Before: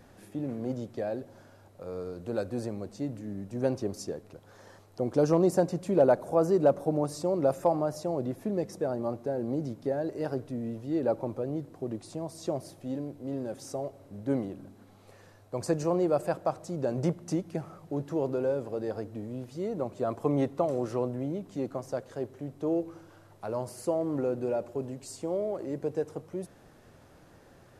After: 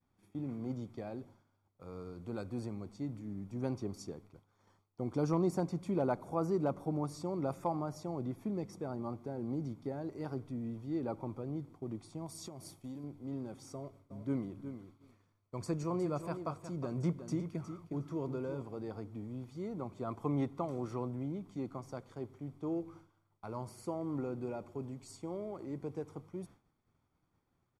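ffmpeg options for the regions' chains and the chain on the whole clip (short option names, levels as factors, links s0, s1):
-filter_complex "[0:a]asettb=1/sr,asplit=3[s0][s1][s2];[s0]atrim=end=12.264[s3];[s1]atrim=start=12.26:end=13.04,asetpts=PTS-STARTPTS,afade=t=in:d=0.004:c=qsin,afade=t=out:st=0.776:d=0.004:c=qsin,highshelf=f=4400:g=11,acompressor=threshold=0.02:ratio=12:attack=3.2:release=140:knee=1:detection=peak[s4];[s2]atrim=start=13.036[s5];[s3][s4]acrossfade=d=0.004:c1=hsin:c2=qsin[s6];[s6][s5]acrossfade=d=0.004:c1=qsin:c2=hsin,asettb=1/sr,asplit=3[s7][s8][s9];[s7]atrim=end=13.734[s10];[s8]atrim=start=13.73:end=18.62,asetpts=PTS-STARTPTS,afade=t=in:d=0.004:c=qsin,afade=t=out:st=4.886:d=0.004:c=qsin,bandreject=f=800:w=6.3,aecho=1:1:362|724:0.316|0.0506,atrim=end_sample=215649[s11];[s9]atrim=start=18.616[s12];[s10][s11]acrossfade=d=0.004:c1=hsin:c2=qsin[s13];[s13][s12]acrossfade=d=0.004:c1=qsin:c2=hsin,agate=range=0.0224:threshold=0.00631:ratio=3:detection=peak,highshelf=f=5800:g=-6,aecho=1:1:0.9:0.57,volume=0.447"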